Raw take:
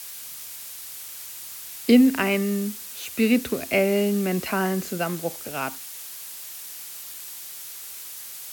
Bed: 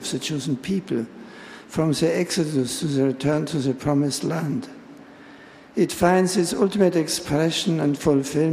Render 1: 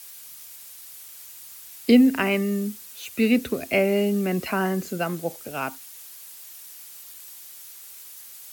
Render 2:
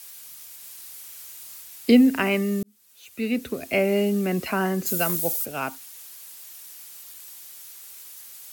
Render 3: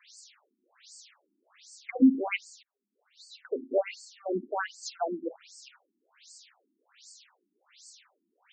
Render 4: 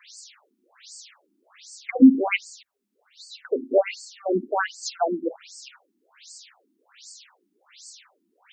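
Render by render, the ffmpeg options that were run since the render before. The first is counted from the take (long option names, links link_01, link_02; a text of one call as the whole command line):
ffmpeg -i in.wav -af "afftdn=noise_reduction=7:noise_floor=-39" out.wav
ffmpeg -i in.wav -filter_complex "[0:a]asettb=1/sr,asplit=3[link_01][link_02][link_03];[link_01]atrim=end=0.594[link_04];[link_02]atrim=start=0.59:end=1.63,asetpts=PTS-STARTPTS,afade=type=in:duration=0.004:curve=qsin,afade=type=out:start_time=1.036:duration=0.004:curve=qsin,asplit=2[link_05][link_06];[link_06]adelay=39,volume=-4dB[link_07];[link_05][link_07]amix=inputs=2:normalize=0,atrim=end_sample=45864[link_08];[link_03]atrim=start=1.626[link_09];[link_04][link_08]acrossfade=duration=0.004:curve1=hsin:curve2=qsin[link_10];[link_10][link_09]acrossfade=duration=0.004:curve1=qsin:curve2=hsin,asplit=3[link_11][link_12][link_13];[link_11]afade=type=out:start_time=4.85:duration=0.02[link_14];[link_12]aemphasis=mode=production:type=75kf,afade=type=in:start_time=4.85:duration=0.02,afade=type=out:start_time=5.44:duration=0.02[link_15];[link_13]afade=type=in:start_time=5.44:duration=0.02[link_16];[link_14][link_15][link_16]amix=inputs=3:normalize=0,asplit=2[link_17][link_18];[link_17]atrim=end=2.63,asetpts=PTS-STARTPTS,afade=type=out:start_time=2.626:duration=0.004:curve=hsin[link_19];[link_18]atrim=start=2.63,asetpts=PTS-STARTPTS,afade=type=in:duration=1.31[link_20];[link_19][link_20]concat=n=2:v=0:a=1" out.wav
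ffmpeg -i in.wav -af "afftfilt=real='re*between(b*sr/1024,250*pow(6200/250,0.5+0.5*sin(2*PI*1.3*pts/sr))/1.41,250*pow(6200/250,0.5+0.5*sin(2*PI*1.3*pts/sr))*1.41)':imag='im*between(b*sr/1024,250*pow(6200/250,0.5+0.5*sin(2*PI*1.3*pts/sr))/1.41,250*pow(6200/250,0.5+0.5*sin(2*PI*1.3*pts/sr))*1.41)':win_size=1024:overlap=0.75" out.wav
ffmpeg -i in.wav -af "volume=7.5dB" out.wav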